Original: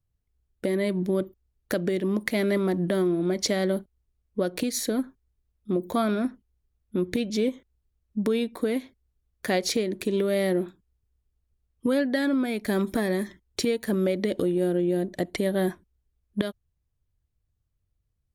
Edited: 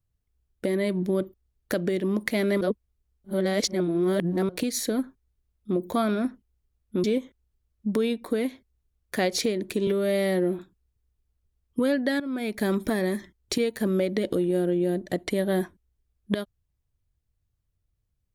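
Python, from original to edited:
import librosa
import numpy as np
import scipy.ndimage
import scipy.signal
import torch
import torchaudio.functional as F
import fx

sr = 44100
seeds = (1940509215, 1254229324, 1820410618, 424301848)

y = fx.edit(x, sr, fx.reverse_span(start_s=2.61, length_s=1.88),
    fx.cut(start_s=7.04, length_s=0.31),
    fx.stretch_span(start_s=10.18, length_s=0.48, factor=1.5),
    fx.fade_in_from(start_s=12.27, length_s=0.28, floor_db=-15.5), tone=tone)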